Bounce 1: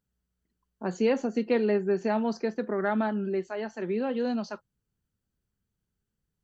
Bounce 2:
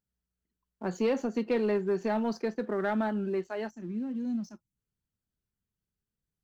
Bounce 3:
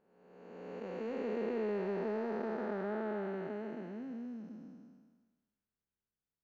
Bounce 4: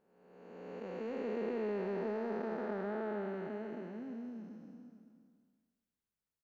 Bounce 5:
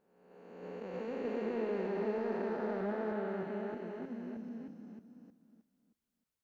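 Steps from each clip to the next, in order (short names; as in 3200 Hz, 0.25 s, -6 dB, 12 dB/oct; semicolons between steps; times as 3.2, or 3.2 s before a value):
spectral gain 3.7–4.77, 350–5100 Hz -18 dB; sample leveller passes 1; gain -5 dB
time blur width 0.848 s; tone controls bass -9 dB, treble -14 dB
outdoor echo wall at 96 m, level -14 dB; gain -1 dB
reverse delay 0.312 s, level -3 dB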